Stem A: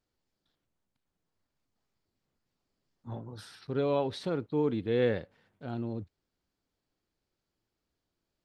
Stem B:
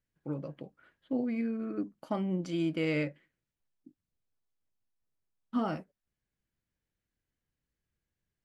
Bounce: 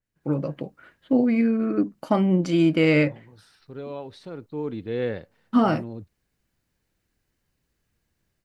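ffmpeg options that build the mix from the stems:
-filter_complex "[0:a]volume=-11.5dB,afade=t=in:st=4.25:d=0.57:silence=0.473151[a];[1:a]volume=0.5dB[b];[a][b]amix=inputs=2:normalize=0,dynaudnorm=f=140:g=3:m=11.5dB,bandreject=f=3.3k:w=19,adynamicequalizer=threshold=0.00562:dfrequency=4600:dqfactor=0.7:tfrequency=4600:tqfactor=0.7:attack=5:release=100:ratio=0.375:range=2:mode=cutabove:tftype=highshelf"

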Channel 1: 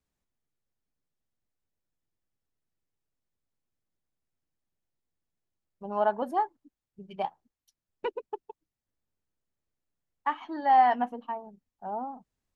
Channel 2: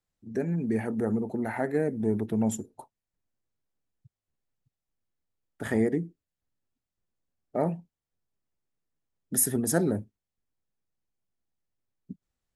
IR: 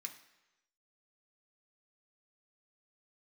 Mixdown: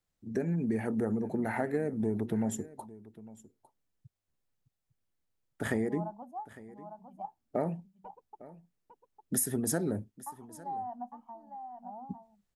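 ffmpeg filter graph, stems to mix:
-filter_complex "[0:a]agate=range=-33dB:threshold=-47dB:ratio=3:detection=peak,firequalizer=gain_entry='entry(220,0);entry(400,-21);entry(720,0);entry(1900,-27);entry(4000,-27);entry(6300,-9)':delay=0.05:min_phase=1,acrossover=split=310[a][b];[b]acompressor=threshold=-27dB:ratio=6[c];[a][c]amix=inputs=2:normalize=0,volume=-9dB,asplit=2[d][e];[e]volume=-7dB[f];[1:a]acompressor=threshold=-28dB:ratio=6,volume=1dB,asplit=2[g][h];[h]volume=-19dB[i];[f][i]amix=inputs=2:normalize=0,aecho=0:1:854:1[j];[d][g][j]amix=inputs=3:normalize=0"

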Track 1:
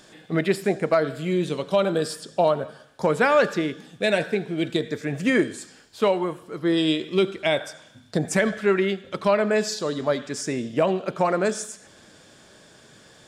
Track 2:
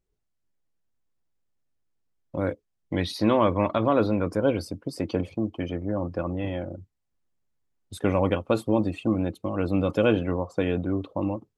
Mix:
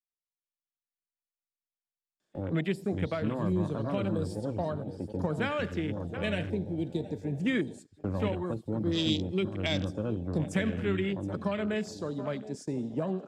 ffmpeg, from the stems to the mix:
-filter_complex "[0:a]lowshelf=f=83:g=-8,adelay=2200,volume=0dB,asplit=2[a][b];[b]volume=-16dB[c];[1:a]lowpass=7.1k,volume=-4.5dB,asplit=2[d][e];[e]volume=-11.5dB[f];[c][f]amix=inputs=2:normalize=0,aecho=0:1:721|1442|2163:1|0.2|0.04[g];[a][d][g]amix=inputs=3:normalize=0,afwtdn=0.0282,agate=range=-14dB:threshold=-40dB:ratio=16:detection=peak,acrossover=split=220|3000[h][i][j];[i]acompressor=threshold=-40dB:ratio=2.5[k];[h][k][j]amix=inputs=3:normalize=0"

